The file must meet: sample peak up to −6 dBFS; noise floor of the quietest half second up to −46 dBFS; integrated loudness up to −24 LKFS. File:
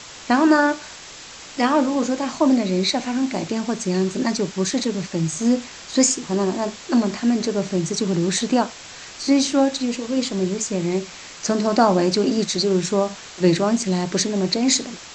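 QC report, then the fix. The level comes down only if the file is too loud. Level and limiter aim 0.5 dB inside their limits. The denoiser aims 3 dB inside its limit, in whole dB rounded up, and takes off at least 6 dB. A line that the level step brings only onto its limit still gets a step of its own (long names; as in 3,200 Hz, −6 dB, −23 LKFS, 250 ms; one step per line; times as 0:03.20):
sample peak −3.0 dBFS: out of spec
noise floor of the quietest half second −40 dBFS: out of spec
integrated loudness −21.0 LKFS: out of spec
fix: broadband denoise 6 dB, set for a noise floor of −40 dBFS
level −3.5 dB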